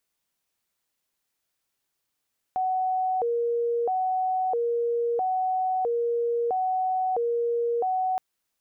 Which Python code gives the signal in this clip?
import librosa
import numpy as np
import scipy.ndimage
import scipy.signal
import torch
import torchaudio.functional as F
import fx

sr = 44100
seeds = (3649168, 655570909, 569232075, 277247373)

y = fx.siren(sr, length_s=5.62, kind='hi-lo', low_hz=471.0, high_hz=747.0, per_s=0.76, wave='sine', level_db=-22.5)